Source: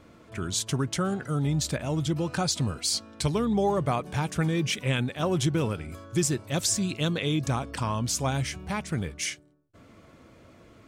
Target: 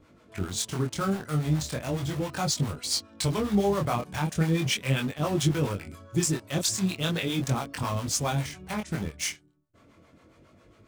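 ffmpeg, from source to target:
-filter_complex "[0:a]asplit=2[a][b];[b]acrusher=bits=4:mix=0:aa=0.000001,volume=-6dB[c];[a][c]amix=inputs=2:normalize=0,acrossover=split=590[d][e];[d]aeval=exprs='val(0)*(1-0.7/2+0.7/2*cos(2*PI*7.3*n/s))':c=same[f];[e]aeval=exprs='val(0)*(1-0.7/2-0.7/2*cos(2*PI*7.3*n/s))':c=same[g];[f][g]amix=inputs=2:normalize=0,flanger=delay=20:depth=6.3:speed=0.37,volume=2dB"

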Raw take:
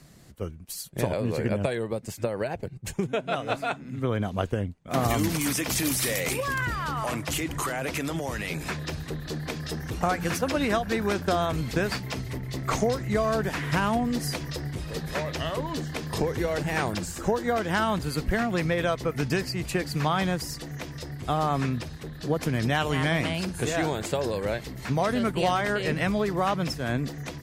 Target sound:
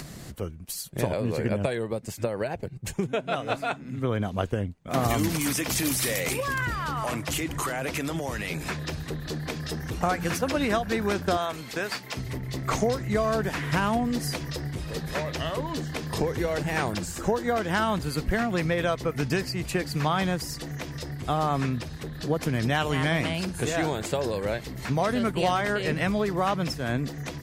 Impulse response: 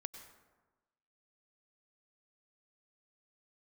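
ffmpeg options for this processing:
-filter_complex "[0:a]acompressor=mode=upward:threshold=-30dB:ratio=2.5,asettb=1/sr,asplit=3[a][b][c];[a]atrim=end=11.374[d];[b]atrim=start=11.37:end=12.17,asetpts=PTS-STARTPTS,afade=t=in:d=0.004:c=qsin,afade=t=out:st=0.796:d=0.004:c=qsin,highpass=f=590:p=1[e];[c]atrim=start=12.166[f];[d][e]acrossfade=d=0.004:c1=hsin:c2=qsin[g];[g][f]acrossfade=d=0.004:c1=qsin:c2=hsin"

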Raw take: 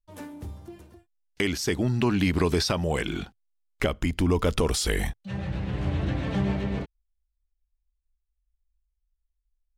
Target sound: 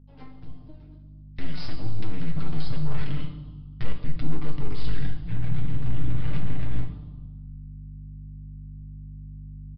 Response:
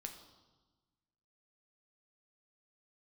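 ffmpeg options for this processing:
-filter_complex "[0:a]aeval=exprs='0.224*(cos(1*acos(clip(val(0)/0.224,-1,1)))-cos(1*PI/2))+0.002*(cos(3*acos(clip(val(0)/0.224,-1,1)))-cos(3*PI/2))+0.1*(cos(4*acos(clip(val(0)/0.224,-1,1)))-cos(4*PI/2))+0.0398*(cos(5*acos(clip(val(0)/0.224,-1,1)))-cos(5*PI/2))+0.0447*(cos(7*acos(clip(val(0)/0.224,-1,1)))-cos(7*PI/2))':c=same,aecho=1:1:6:0.8,acrossover=split=690[a][b];[b]alimiter=limit=-17.5dB:level=0:latency=1:release=94[c];[a][c]amix=inputs=2:normalize=0,acompressor=threshold=-22dB:ratio=12,asetrate=39289,aresample=44100,atempo=1.12246,aeval=exprs='val(0)+0.00631*(sin(2*PI*50*n/s)+sin(2*PI*2*50*n/s)/2+sin(2*PI*3*50*n/s)/3+sin(2*PI*4*50*n/s)/4+sin(2*PI*5*50*n/s)/5)':c=same,aresample=11025,asoftclip=type=tanh:threshold=-25dB,aresample=44100,asubboost=boost=4:cutoff=210[d];[1:a]atrim=start_sample=2205,asetrate=43218,aresample=44100[e];[d][e]afir=irnorm=-1:irlink=0"

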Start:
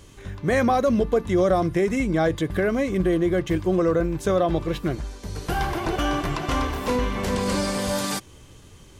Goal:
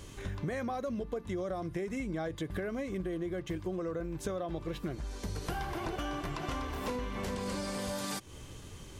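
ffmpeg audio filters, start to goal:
-af "acompressor=threshold=-33dB:ratio=12"

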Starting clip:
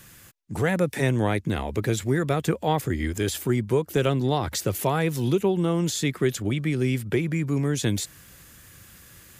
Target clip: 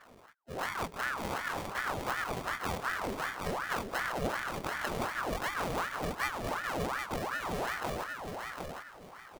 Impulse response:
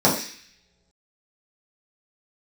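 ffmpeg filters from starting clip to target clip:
-af "afftfilt=real='re':imag='-im':win_size=2048:overlap=0.75,acompressor=threshold=-31dB:ratio=3,acrusher=samples=38:mix=1:aa=0.000001,aecho=1:1:758|1516|2274:0.596|0.149|0.0372,aeval=exprs='val(0)*sin(2*PI*960*n/s+960*0.7/2.7*sin(2*PI*2.7*n/s))':c=same"

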